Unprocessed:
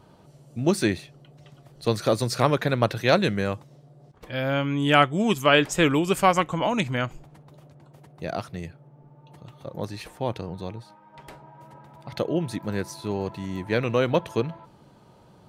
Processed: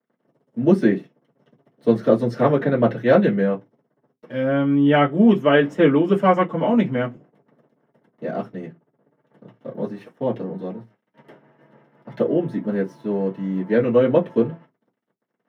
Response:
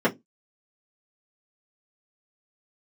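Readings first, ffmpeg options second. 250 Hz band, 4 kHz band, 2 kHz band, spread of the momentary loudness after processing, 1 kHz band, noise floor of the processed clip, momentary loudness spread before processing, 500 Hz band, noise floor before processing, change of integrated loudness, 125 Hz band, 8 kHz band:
+7.5 dB, -7.0 dB, -1.0 dB, 15 LU, +0.5 dB, -76 dBFS, 17 LU, +6.0 dB, -54 dBFS, +4.5 dB, +2.0 dB, under -20 dB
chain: -filter_complex "[0:a]aeval=exprs='sgn(val(0))*max(abs(val(0))-0.00473,0)':c=same[s0];[1:a]atrim=start_sample=2205[s1];[s0][s1]afir=irnorm=-1:irlink=0,adynamicequalizer=threshold=0.0447:dfrequency=4700:dqfactor=0.7:tfrequency=4700:tqfactor=0.7:attack=5:release=100:ratio=0.375:range=3.5:mode=cutabove:tftype=highshelf,volume=0.178"

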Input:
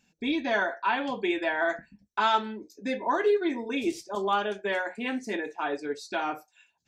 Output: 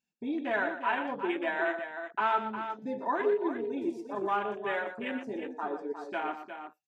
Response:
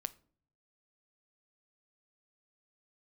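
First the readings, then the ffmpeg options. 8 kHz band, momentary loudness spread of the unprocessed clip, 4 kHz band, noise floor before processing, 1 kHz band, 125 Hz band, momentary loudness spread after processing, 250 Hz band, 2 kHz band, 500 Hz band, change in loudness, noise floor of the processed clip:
under -15 dB, 9 LU, -11.0 dB, -74 dBFS, -3.0 dB, no reading, 8 LU, -3.5 dB, -4.0 dB, -3.5 dB, -3.5 dB, -64 dBFS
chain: -af "afwtdn=0.0251,lowshelf=f=120:g=-7.5,aecho=1:1:120|357:0.316|0.355,volume=0.668"

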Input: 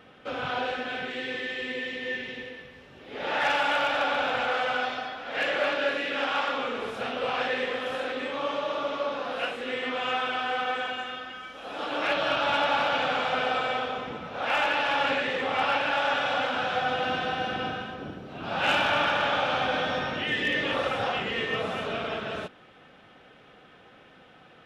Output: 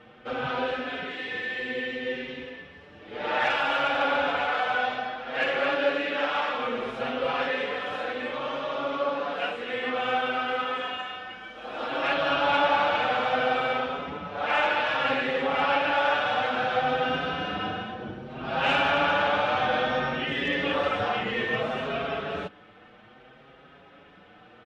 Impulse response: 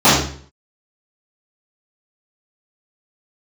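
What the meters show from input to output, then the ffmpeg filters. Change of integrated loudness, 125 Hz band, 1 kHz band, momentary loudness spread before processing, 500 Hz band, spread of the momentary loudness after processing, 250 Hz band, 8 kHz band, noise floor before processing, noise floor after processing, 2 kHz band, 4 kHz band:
+1.0 dB, +2.0 dB, +1.5 dB, 10 LU, +2.0 dB, 11 LU, +2.0 dB, no reading, -54 dBFS, -52 dBFS, +0.5 dB, -1.0 dB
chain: -filter_complex "[0:a]aemphasis=mode=reproduction:type=50fm,asplit=2[s0][s1];[s1]adelay=6.2,afreqshift=0.61[s2];[s0][s2]amix=inputs=2:normalize=1,volume=1.68"

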